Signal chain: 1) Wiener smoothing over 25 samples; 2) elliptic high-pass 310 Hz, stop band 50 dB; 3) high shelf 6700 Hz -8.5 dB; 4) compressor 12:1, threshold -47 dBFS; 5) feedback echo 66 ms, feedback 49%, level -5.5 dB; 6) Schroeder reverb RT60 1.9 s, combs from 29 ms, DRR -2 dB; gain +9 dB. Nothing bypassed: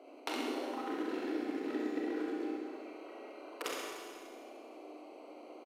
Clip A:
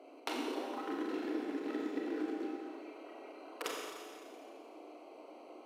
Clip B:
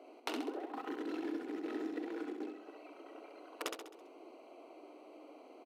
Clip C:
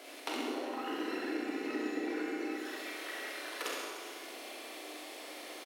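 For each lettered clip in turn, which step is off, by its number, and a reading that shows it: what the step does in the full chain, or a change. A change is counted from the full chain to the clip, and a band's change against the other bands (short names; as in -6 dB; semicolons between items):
5, echo-to-direct 4.0 dB to 2.0 dB; 6, echo-to-direct 4.0 dB to -4.5 dB; 1, 250 Hz band -5.0 dB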